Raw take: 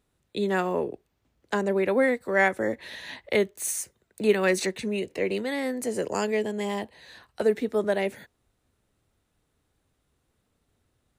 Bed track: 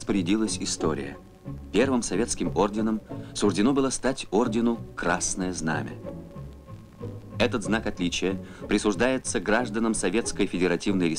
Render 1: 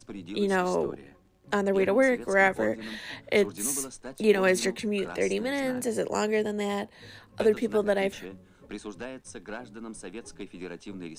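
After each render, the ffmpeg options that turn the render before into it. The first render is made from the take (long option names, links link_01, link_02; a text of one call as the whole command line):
ffmpeg -i in.wav -i bed.wav -filter_complex "[1:a]volume=-15.5dB[link_01];[0:a][link_01]amix=inputs=2:normalize=0" out.wav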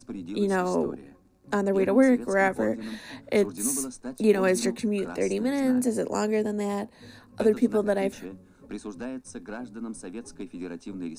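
ffmpeg -i in.wav -af "equalizer=frequency=250:width_type=o:width=0.33:gain=10,equalizer=frequency=2000:width_type=o:width=0.33:gain=-6,equalizer=frequency=3150:width_type=o:width=0.33:gain=-11,equalizer=frequency=10000:width_type=o:width=0.33:gain=3" out.wav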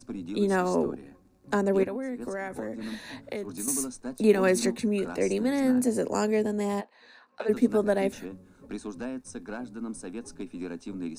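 ffmpeg -i in.wav -filter_complex "[0:a]asettb=1/sr,asplit=3[link_01][link_02][link_03];[link_01]atrim=end=1.834[link_04];[link_02]atrim=start=1.83:end=3.68,asetpts=PTS-STARTPTS,afade=type=in:duration=0.004:curve=qsin,afade=type=out:start_time=1.846:duration=0.004:curve=qsin,acompressor=threshold=-29dB:ratio=20:attack=3.2:release=140:knee=1:detection=peak[link_05];[link_03]atrim=start=3.676[link_06];[link_04][link_05]acrossfade=duration=0.004:curve1=hsin:curve2=qsin[link_07];[link_07][link_06]acrossfade=duration=0.004:curve1=qsin:curve2=hsin,asplit=3[link_08][link_09][link_10];[link_08]afade=type=out:start_time=6.8:duration=0.02[link_11];[link_09]highpass=780,lowpass=3500,afade=type=in:start_time=6.8:duration=0.02,afade=type=out:start_time=7.48:duration=0.02[link_12];[link_10]afade=type=in:start_time=7.48:duration=0.02[link_13];[link_11][link_12][link_13]amix=inputs=3:normalize=0" out.wav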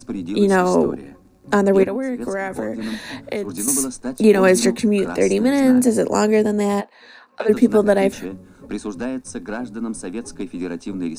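ffmpeg -i in.wav -af "volume=9.5dB,alimiter=limit=-3dB:level=0:latency=1" out.wav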